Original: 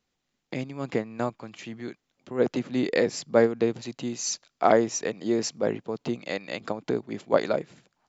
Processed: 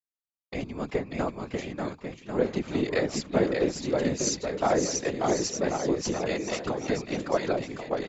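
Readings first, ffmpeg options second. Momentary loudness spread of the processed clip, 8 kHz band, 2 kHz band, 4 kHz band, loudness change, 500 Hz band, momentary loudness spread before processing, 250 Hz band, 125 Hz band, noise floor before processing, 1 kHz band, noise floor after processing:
9 LU, no reading, -0.5 dB, +1.0 dB, -1.5 dB, -2.0 dB, 15 LU, -0.5 dB, +2.5 dB, -80 dBFS, -1.5 dB, under -85 dBFS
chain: -filter_complex "[0:a]acompressor=threshold=0.0631:ratio=2,asplit=2[s0][s1];[s1]aecho=0:1:590|1092|1518|1880|2188:0.631|0.398|0.251|0.158|0.1[s2];[s0][s2]amix=inputs=2:normalize=0,afftfilt=real='hypot(re,im)*cos(2*PI*random(0))':imag='hypot(re,im)*sin(2*PI*random(1))':win_size=512:overlap=0.75,agate=range=0.0224:threshold=0.00794:ratio=3:detection=peak,volume=2"

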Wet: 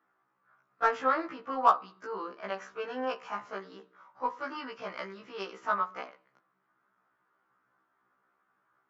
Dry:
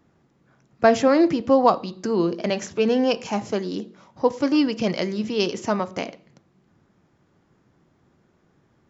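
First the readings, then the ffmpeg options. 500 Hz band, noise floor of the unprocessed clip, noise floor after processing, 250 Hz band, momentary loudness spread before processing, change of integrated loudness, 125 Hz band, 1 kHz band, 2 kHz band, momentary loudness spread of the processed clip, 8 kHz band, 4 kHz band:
-15.5 dB, -64 dBFS, -76 dBFS, -22.0 dB, 11 LU, -10.5 dB, under -20 dB, -4.0 dB, -5.5 dB, 16 LU, no reading, -15.5 dB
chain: -af "bandpass=f=1300:t=q:w=3.5:csg=0,aeval=exprs='0.282*(cos(1*acos(clip(val(0)/0.282,-1,1)))-cos(1*PI/2))+0.00708*(cos(7*acos(clip(val(0)/0.282,-1,1)))-cos(7*PI/2))':c=same,afftfilt=real='re*1.73*eq(mod(b,3),0)':imag='im*1.73*eq(mod(b,3),0)':win_size=2048:overlap=0.75,volume=2"

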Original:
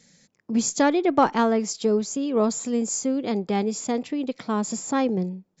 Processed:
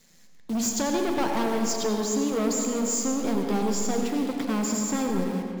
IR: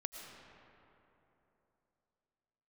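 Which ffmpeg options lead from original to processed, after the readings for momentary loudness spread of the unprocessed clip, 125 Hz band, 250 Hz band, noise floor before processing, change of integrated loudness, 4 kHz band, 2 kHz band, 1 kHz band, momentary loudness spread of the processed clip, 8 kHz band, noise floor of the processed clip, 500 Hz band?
7 LU, -1.0 dB, -2.0 dB, -71 dBFS, -2.0 dB, +1.0 dB, -2.5 dB, -5.0 dB, 3 LU, no reading, -50 dBFS, -3.5 dB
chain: -filter_complex "[0:a]bandreject=f=60:t=h:w=6,bandreject=f=120:t=h:w=6,bandreject=f=180:t=h:w=6,bandreject=f=240:t=h:w=6,bandreject=f=300:t=h:w=6,bandreject=f=360:t=h:w=6,bandreject=f=420:t=h:w=6,bandreject=f=480:t=h:w=6,acrossover=split=130|3000[s0][s1][s2];[s1]acompressor=threshold=0.0708:ratio=2.5[s3];[s0][s3][s2]amix=inputs=3:normalize=0,acrusher=bits=8:dc=4:mix=0:aa=0.000001,asoftclip=type=hard:threshold=0.0501[s4];[1:a]atrim=start_sample=2205,asetrate=57330,aresample=44100[s5];[s4][s5]afir=irnorm=-1:irlink=0,volume=2.37"

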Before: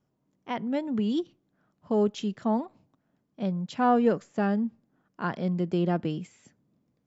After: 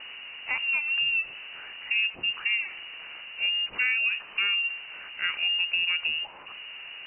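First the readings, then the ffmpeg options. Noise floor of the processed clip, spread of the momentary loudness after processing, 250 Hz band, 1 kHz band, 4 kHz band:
-45 dBFS, 15 LU, under -30 dB, -13.5 dB, +19.5 dB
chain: -af "aeval=exprs='val(0)+0.5*0.0133*sgn(val(0))':c=same,acompressor=threshold=0.0562:ratio=6,bandreject=f=224.5:t=h:w=4,bandreject=f=449:t=h:w=4,bandreject=f=673.5:t=h:w=4,bandreject=f=898:t=h:w=4,bandreject=f=1122.5:t=h:w=4,bandreject=f=1347:t=h:w=4,bandreject=f=1571.5:t=h:w=4,bandreject=f=1796:t=h:w=4,bandreject=f=2020.5:t=h:w=4,bandreject=f=2245:t=h:w=4,bandreject=f=2469.5:t=h:w=4,bandreject=f=2694:t=h:w=4,bandreject=f=2918.5:t=h:w=4,bandreject=f=3143:t=h:w=4,bandreject=f=3367.5:t=h:w=4,bandreject=f=3592:t=h:w=4,bandreject=f=3816.5:t=h:w=4,bandreject=f=4041:t=h:w=4,bandreject=f=4265.5:t=h:w=4,bandreject=f=4490:t=h:w=4,bandreject=f=4714.5:t=h:w=4,bandreject=f=4939:t=h:w=4,bandreject=f=5163.5:t=h:w=4,bandreject=f=5388:t=h:w=4,bandreject=f=5612.5:t=h:w=4,bandreject=f=5837:t=h:w=4,bandreject=f=6061.5:t=h:w=4,lowpass=f=2600:t=q:w=0.5098,lowpass=f=2600:t=q:w=0.6013,lowpass=f=2600:t=q:w=0.9,lowpass=f=2600:t=q:w=2.563,afreqshift=-3000,volume=1.26"

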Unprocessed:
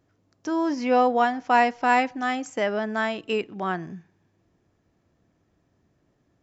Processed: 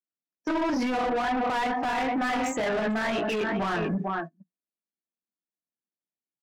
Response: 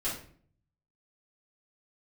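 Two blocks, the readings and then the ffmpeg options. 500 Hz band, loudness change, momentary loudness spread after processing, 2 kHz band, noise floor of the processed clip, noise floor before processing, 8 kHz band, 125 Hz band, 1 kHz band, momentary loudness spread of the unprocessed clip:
-3.5 dB, -3.5 dB, 5 LU, -2.5 dB, under -85 dBFS, -69 dBFS, no reading, +4.5 dB, -4.5 dB, 9 LU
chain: -filter_complex "[0:a]aecho=1:1:447:0.168,flanger=delay=16.5:depth=6.8:speed=2.2,acompressor=threshold=0.0501:ratio=6,acrusher=bits=6:mode=log:mix=0:aa=0.000001,bandreject=f=138.1:t=h:w=4,bandreject=f=276.2:t=h:w=4,bandreject=f=414.3:t=h:w=4,bandreject=f=552.4:t=h:w=4,bandreject=f=690.5:t=h:w=4,bandreject=f=828.6:t=h:w=4,bandreject=f=966.7:t=h:w=4,bandreject=f=1104.8:t=h:w=4,bandreject=f=1242.9:t=h:w=4,bandreject=f=1381:t=h:w=4,bandreject=f=1519.1:t=h:w=4,afftdn=nr=24:nf=-49,lowshelf=f=130:t=q:w=3:g=-13.5,asplit=2[s0][s1];[s1]highpass=f=720:p=1,volume=22.4,asoftclip=type=tanh:threshold=0.15[s2];[s0][s2]amix=inputs=2:normalize=0,lowpass=f=2800:p=1,volume=0.501,agate=range=0.0282:threshold=0.02:ratio=16:detection=peak,alimiter=level_in=1.41:limit=0.0631:level=0:latency=1:release=76,volume=0.708,volume=1.68"

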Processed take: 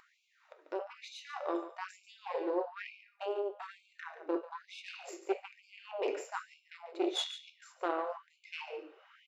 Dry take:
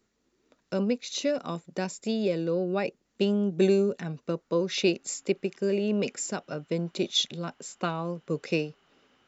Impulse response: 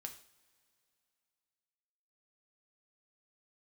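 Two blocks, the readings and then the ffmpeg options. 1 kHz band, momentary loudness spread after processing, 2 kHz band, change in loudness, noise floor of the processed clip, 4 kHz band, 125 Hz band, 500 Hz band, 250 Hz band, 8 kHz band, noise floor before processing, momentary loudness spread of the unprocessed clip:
-1.5 dB, 14 LU, -7.0 dB, -10.5 dB, -72 dBFS, -10.5 dB, under -40 dB, -10.0 dB, -14.5 dB, no reading, -75 dBFS, 9 LU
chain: -filter_complex "[0:a]bass=f=250:g=4,treble=f=4000:g=-11[s0];[1:a]atrim=start_sample=2205,afade=t=out:st=0.35:d=0.01,atrim=end_sample=15876[s1];[s0][s1]afir=irnorm=-1:irlink=0,aeval=exprs='0.211*(cos(1*acos(clip(val(0)/0.211,-1,1)))-cos(1*PI/2))+0.0376*(cos(6*acos(clip(val(0)/0.211,-1,1)))-cos(6*PI/2))':c=same,highshelf=f=2500:g=-12,areverse,acompressor=threshold=0.0178:ratio=5,areverse,aecho=1:1:142:0.237,acompressor=mode=upward:threshold=0.00316:ratio=2.5,afftfilt=real='re*gte(b*sr/1024,280*pow(2200/280,0.5+0.5*sin(2*PI*1.1*pts/sr)))':imag='im*gte(b*sr/1024,280*pow(2200/280,0.5+0.5*sin(2*PI*1.1*pts/sr)))':win_size=1024:overlap=0.75,volume=2.66"

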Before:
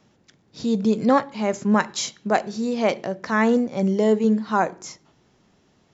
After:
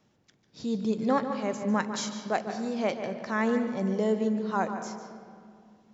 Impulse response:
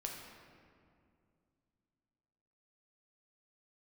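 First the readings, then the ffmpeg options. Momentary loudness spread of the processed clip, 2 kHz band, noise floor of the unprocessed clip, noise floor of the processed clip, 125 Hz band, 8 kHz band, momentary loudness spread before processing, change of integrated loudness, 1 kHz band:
10 LU, -7.5 dB, -62 dBFS, -68 dBFS, -7.0 dB, no reading, 8 LU, -7.5 dB, -7.0 dB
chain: -filter_complex "[0:a]asplit=2[s0][s1];[1:a]atrim=start_sample=2205,lowpass=6200,adelay=146[s2];[s1][s2]afir=irnorm=-1:irlink=0,volume=0.473[s3];[s0][s3]amix=inputs=2:normalize=0,volume=0.398"

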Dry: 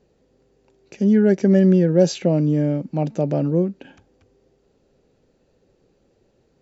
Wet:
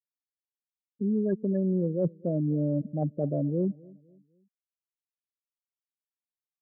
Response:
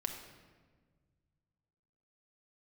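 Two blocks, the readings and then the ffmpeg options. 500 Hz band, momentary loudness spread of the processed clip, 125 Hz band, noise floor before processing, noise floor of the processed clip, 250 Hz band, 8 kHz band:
-11.0 dB, 5 LU, -9.0 dB, -64 dBFS, under -85 dBFS, -10.5 dB, no reading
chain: -filter_complex "[0:a]afftfilt=real='re*gte(hypot(re,im),0.224)':imag='im*gte(hypot(re,im),0.224)':win_size=1024:overlap=0.75,areverse,acompressor=threshold=0.0708:ratio=8,areverse,asplit=2[s0][s1];[s1]adelay=254,lowpass=f=1000:p=1,volume=0.0708,asplit=2[s2][s3];[s3]adelay=254,lowpass=f=1000:p=1,volume=0.39,asplit=2[s4][s5];[s5]adelay=254,lowpass=f=1000:p=1,volume=0.39[s6];[s0][s2][s4][s6]amix=inputs=4:normalize=0,aresample=8000,aresample=44100,volume=0.891"

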